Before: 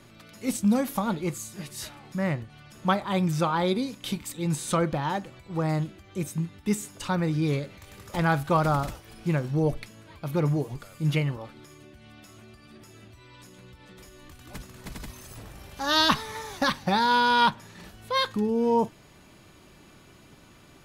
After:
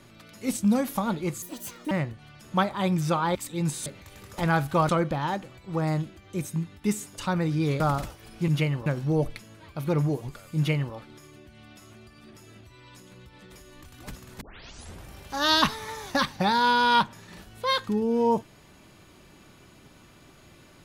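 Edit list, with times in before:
1.42–2.22 speed 163%
3.66–4.2 cut
7.62–8.65 move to 4.71
11.03–11.41 copy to 9.33
14.88 tape start 0.64 s

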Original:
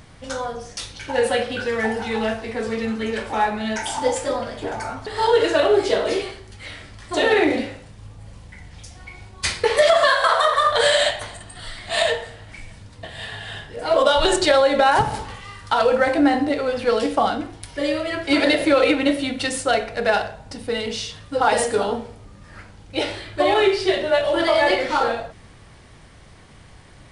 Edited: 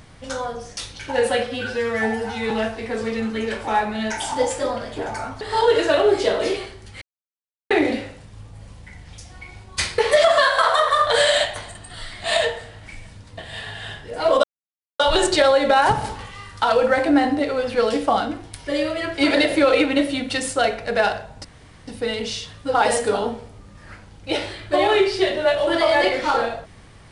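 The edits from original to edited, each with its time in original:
1.47–2.16 stretch 1.5×
6.67–7.36 mute
14.09 insert silence 0.56 s
20.54 insert room tone 0.43 s

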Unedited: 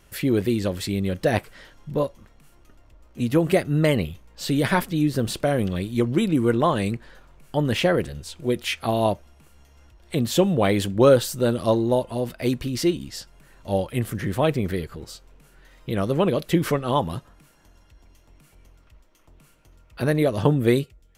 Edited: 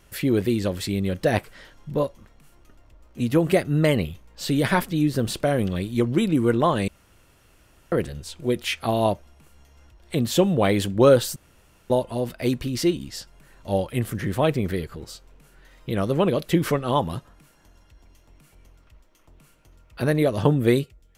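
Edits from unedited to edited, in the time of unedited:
6.88–7.92 room tone
11.36–11.9 room tone

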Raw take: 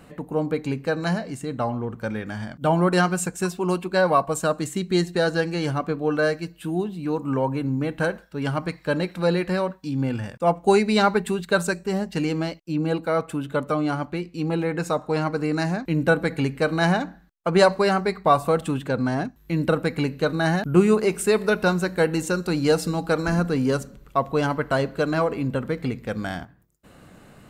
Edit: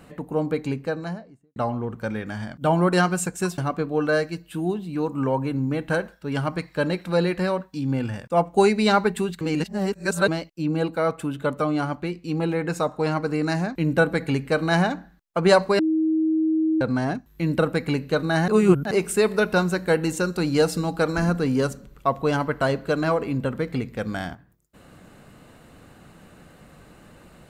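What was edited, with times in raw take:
0.59–1.56 studio fade out
3.58–5.68 cut
11.51–12.38 reverse
17.89–18.91 bleep 317 Hz -18 dBFS
20.58–21.01 reverse

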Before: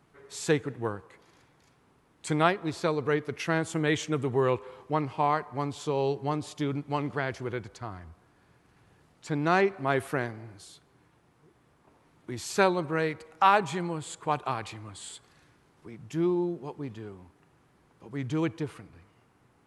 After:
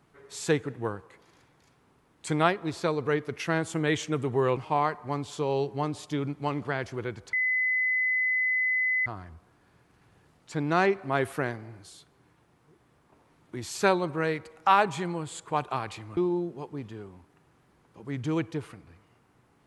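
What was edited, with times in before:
4.57–5.05 cut
7.81 add tone 2020 Hz -23 dBFS 1.73 s
14.92–16.23 cut

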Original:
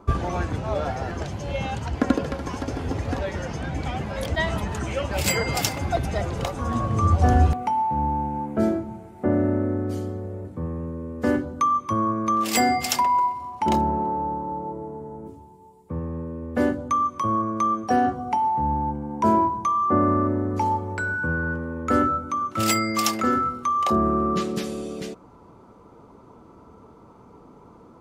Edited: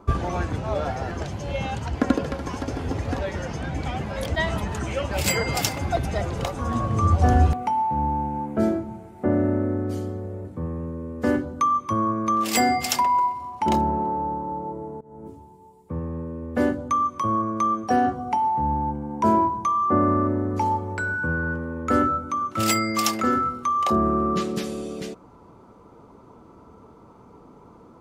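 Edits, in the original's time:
15.01–15.28 fade in, from -23.5 dB

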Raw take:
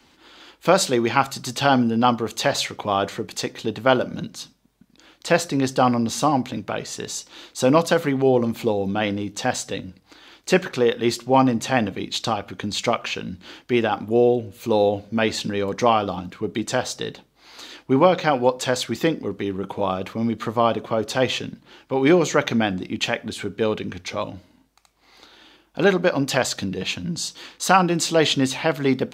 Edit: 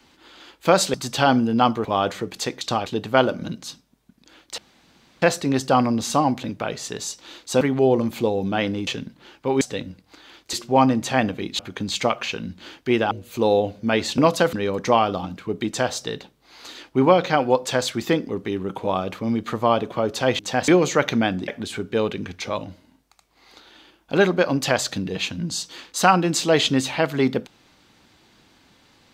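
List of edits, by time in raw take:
0.94–1.37 cut
2.28–2.82 cut
5.3 insert room tone 0.64 s
7.69–8.04 move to 15.47
9.3–9.59 swap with 21.33–22.07
10.51–11.11 cut
12.17–12.42 move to 3.58
13.94–14.4 cut
22.87–23.14 cut

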